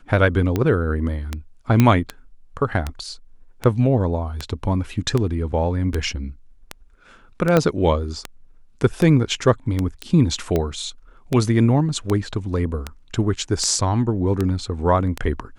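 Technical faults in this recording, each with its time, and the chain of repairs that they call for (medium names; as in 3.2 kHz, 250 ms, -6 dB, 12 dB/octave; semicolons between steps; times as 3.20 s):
tick 78 rpm -9 dBFS
1.80 s: pop -3 dBFS
7.57 s: pop -4 dBFS
10.02 s: pop -17 dBFS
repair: de-click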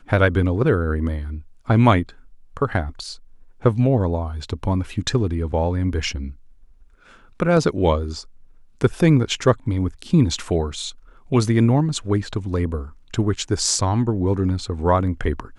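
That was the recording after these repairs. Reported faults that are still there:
7.57 s: pop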